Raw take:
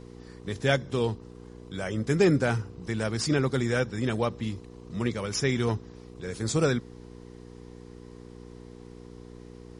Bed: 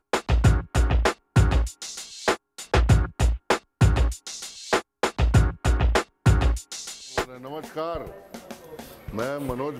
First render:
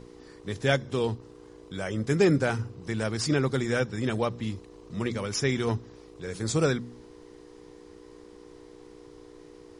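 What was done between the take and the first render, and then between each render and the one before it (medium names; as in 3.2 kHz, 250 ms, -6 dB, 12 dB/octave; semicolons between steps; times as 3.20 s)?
de-hum 60 Hz, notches 4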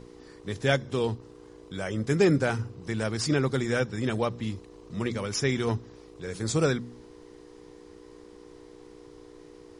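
no audible change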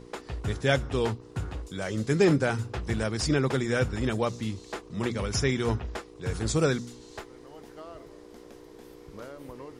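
add bed -15 dB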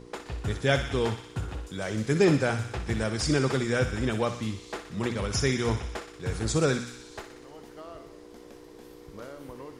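thinning echo 61 ms, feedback 74%, high-pass 940 Hz, level -8 dB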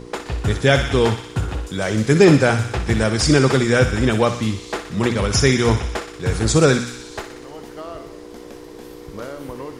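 trim +10.5 dB; peak limiter -1 dBFS, peak gain reduction 2.5 dB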